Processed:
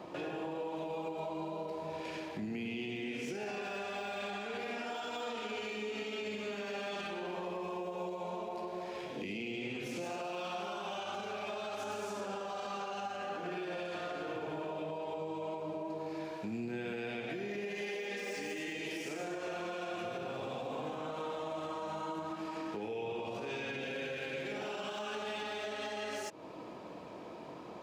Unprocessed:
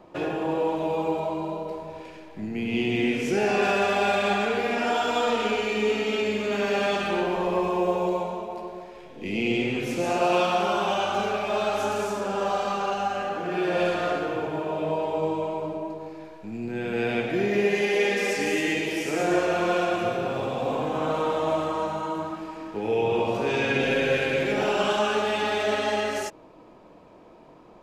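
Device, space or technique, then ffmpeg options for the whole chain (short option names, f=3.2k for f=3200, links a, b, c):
broadcast voice chain: -af "highpass=95,deesser=0.85,acompressor=threshold=-40dB:ratio=4,equalizer=f=4.4k:t=o:w=2:g=4,alimiter=level_in=10dB:limit=-24dB:level=0:latency=1:release=81,volume=-10dB,volume=3dB"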